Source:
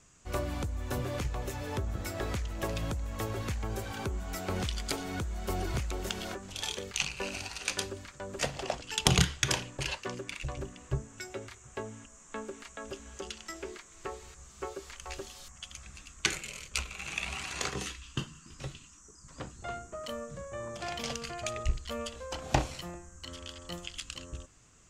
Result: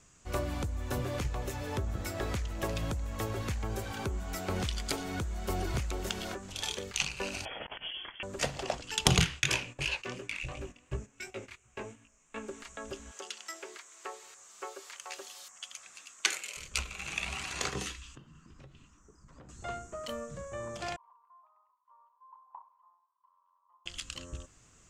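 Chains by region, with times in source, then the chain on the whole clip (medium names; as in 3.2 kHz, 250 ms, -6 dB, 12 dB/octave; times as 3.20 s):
7.45–8.23 s: compressor with a negative ratio -40 dBFS, ratio -0.5 + frequency inversion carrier 3.3 kHz
9.20–12.48 s: peaking EQ 2.5 kHz +9.5 dB 0.49 oct + chorus 2.8 Hz, delay 17.5 ms, depth 7.5 ms + gate -49 dBFS, range -10 dB
13.11–16.57 s: high-pass 550 Hz + treble shelf 9.5 kHz +4 dB
18.15–19.49 s: low-pass 1.3 kHz 6 dB/octave + compression 5:1, threshold -50 dBFS
20.96–23.86 s: flange 1.4 Hz, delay 1.7 ms, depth 7.7 ms, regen +89% + Butterworth band-pass 1 kHz, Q 7.9
whole clip: none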